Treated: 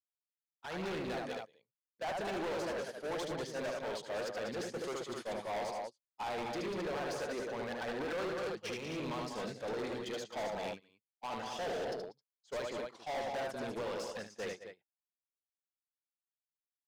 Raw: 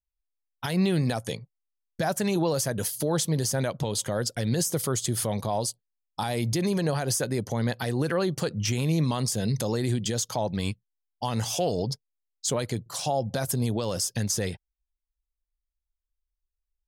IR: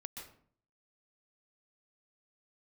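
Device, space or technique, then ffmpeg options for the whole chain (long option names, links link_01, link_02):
walkie-talkie: -af "highpass=410,lowpass=2700,aecho=1:1:76|193|205|265:0.596|0.422|0.133|0.447,asoftclip=type=hard:threshold=-32dB,agate=range=-23dB:threshold=-36dB:ratio=16:detection=peak,volume=-2.5dB"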